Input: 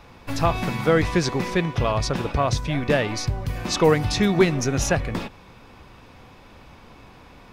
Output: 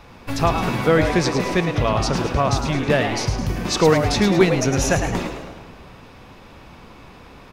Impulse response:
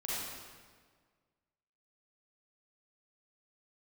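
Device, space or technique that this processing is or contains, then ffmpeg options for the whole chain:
ducked reverb: -filter_complex "[0:a]asplit=3[link_01][link_02][link_03];[1:a]atrim=start_sample=2205[link_04];[link_02][link_04]afir=irnorm=-1:irlink=0[link_05];[link_03]apad=whole_len=331970[link_06];[link_05][link_06]sidechaincompress=threshold=-22dB:ratio=8:attack=16:release=390,volume=-13dB[link_07];[link_01][link_07]amix=inputs=2:normalize=0,asplit=6[link_08][link_09][link_10][link_11][link_12][link_13];[link_09]adelay=107,afreqshift=130,volume=-8dB[link_14];[link_10]adelay=214,afreqshift=260,volume=-14.7dB[link_15];[link_11]adelay=321,afreqshift=390,volume=-21.5dB[link_16];[link_12]adelay=428,afreqshift=520,volume=-28.2dB[link_17];[link_13]adelay=535,afreqshift=650,volume=-35dB[link_18];[link_08][link_14][link_15][link_16][link_17][link_18]amix=inputs=6:normalize=0,volume=1.5dB"

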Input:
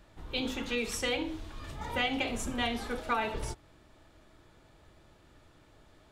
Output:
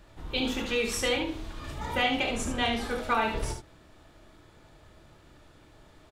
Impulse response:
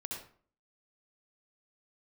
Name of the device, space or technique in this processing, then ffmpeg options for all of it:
slapback doubling: -filter_complex "[0:a]asettb=1/sr,asplit=3[link_01][link_02][link_03];[link_01]atrim=end=2.274[link_04];[link_02]atrim=start=2.27:end=2.81,asetpts=PTS-STARTPTS,afade=type=in:duration=0.004:curve=qsin,afade=type=out:start_time=0.536:duration=0.004:curve=qsin,lowpass=11000[link_05];[link_03]atrim=start=2.806[link_06];[link_04][link_05]acrossfade=duration=0.004:curve1=hsin:curve2=qsin[link_07];[link_07][link_06]acrossfade=duration=0.004:curve1=qsin:curve2=hsin,asplit=3[link_08][link_09][link_10];[link_09]adelay=27,volume=-8dB[link_11];[link_10]adelay=73,volume=-7dB[link_12];[link_08][link_11][link_12]amix=inputs=3:normalize=0,volume=3dB"

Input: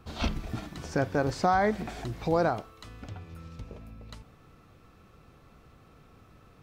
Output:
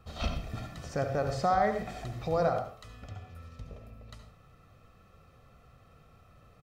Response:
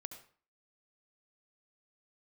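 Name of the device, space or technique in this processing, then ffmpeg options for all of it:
microphone above a desk: -filter_complex "[0:a]aecho=1:1:1.6:0.5[link_01];[1:a]atrim=start_sample=2205[link_02];[link_01][link_02]afir=irnorm=-1:irlink=0"

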